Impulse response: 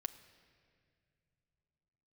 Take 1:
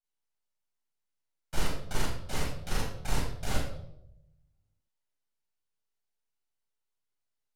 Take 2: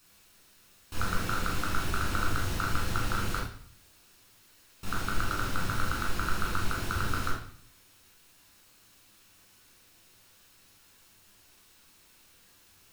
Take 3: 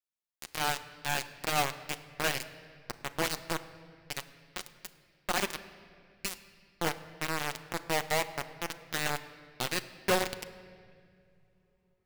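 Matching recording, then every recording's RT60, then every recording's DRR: 3; 0.80, 0.55, 2.3 s; -7.0, -4.5, 8.0 dB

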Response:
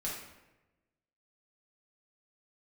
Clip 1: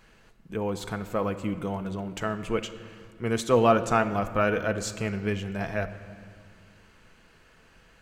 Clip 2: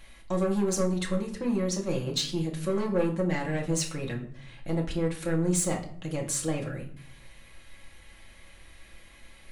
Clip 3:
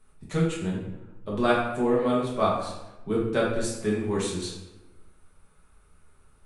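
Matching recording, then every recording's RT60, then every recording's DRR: 3; 1.9, 0.60, 1.0 s; 7.5, -1.5, -6.0 dB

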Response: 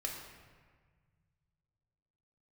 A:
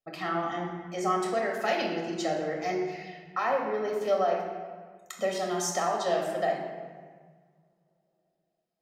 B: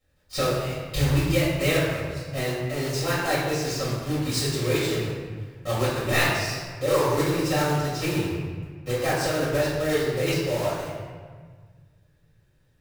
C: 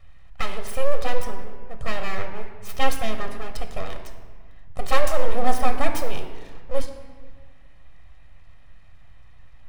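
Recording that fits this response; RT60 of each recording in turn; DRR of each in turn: A; 1.6, 1.6, 1.6 s; -1.0, -10.0, 5.0 dB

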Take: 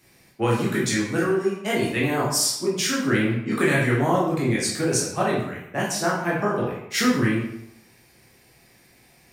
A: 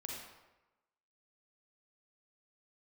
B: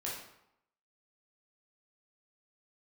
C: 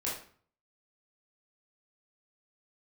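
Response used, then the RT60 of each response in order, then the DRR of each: B; 1.1, 0.80, 0.50 s; -2.0, -5.5, -7.0 dB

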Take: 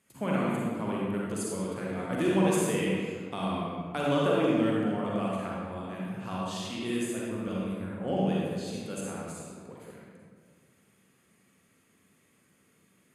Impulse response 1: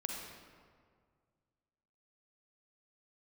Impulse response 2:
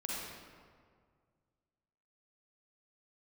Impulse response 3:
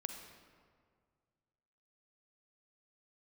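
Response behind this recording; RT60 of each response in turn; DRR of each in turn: 2; 1.9, 1.9, 1.9 s; 0.0, -5.0, 5.0 dB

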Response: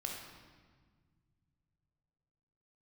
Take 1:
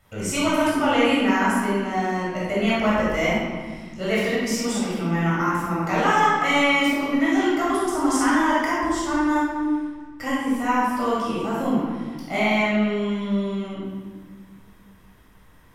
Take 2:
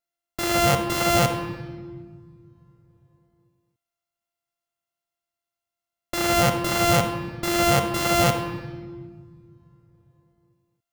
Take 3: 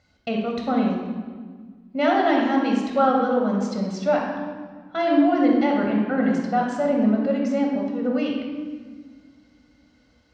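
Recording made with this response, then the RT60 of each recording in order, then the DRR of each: 3; 1.6, 1.7, 1.6 s; -7.5, 6.5, 0.0 dB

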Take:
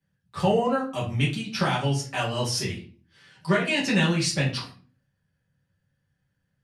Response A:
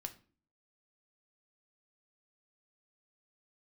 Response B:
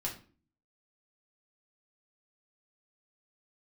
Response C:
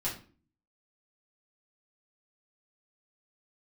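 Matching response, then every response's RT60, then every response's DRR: C; 0.45, 0.40, 0.40 s; 6.5, -2.5, -7.0 dB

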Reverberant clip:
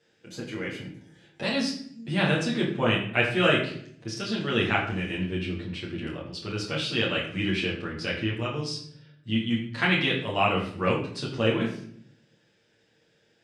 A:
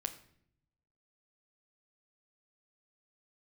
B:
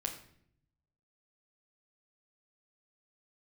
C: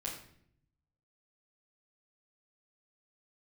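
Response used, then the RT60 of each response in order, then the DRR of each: C; 0.65, 0.65, 0.65 s; 6.0, 1.0, -6.0 dB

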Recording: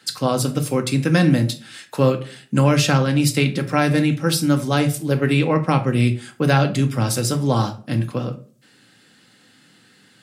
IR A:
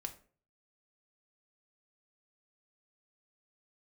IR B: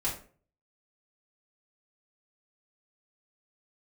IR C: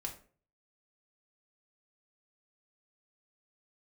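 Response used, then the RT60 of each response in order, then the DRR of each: A; 0.45, 0.45, 0.45 s; 6.0, -6.5, 1.5 dB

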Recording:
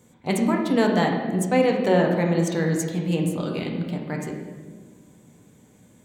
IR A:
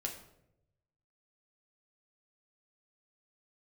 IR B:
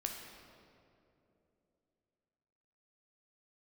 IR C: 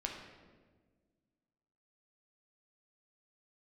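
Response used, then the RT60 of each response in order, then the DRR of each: C; 0.85, 2.9, 1.5 s; 0.5, 1.5, 0.0 dB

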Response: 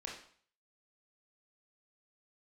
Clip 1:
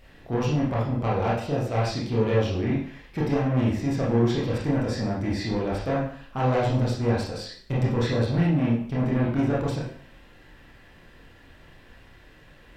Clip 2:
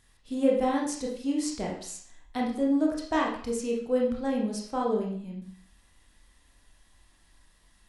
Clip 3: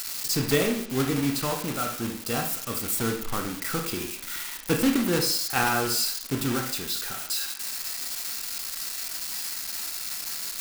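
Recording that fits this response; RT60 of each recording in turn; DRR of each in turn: 2; 0.50, 0.50, 0.50 s; -6.5, -2.5, 3.0 dB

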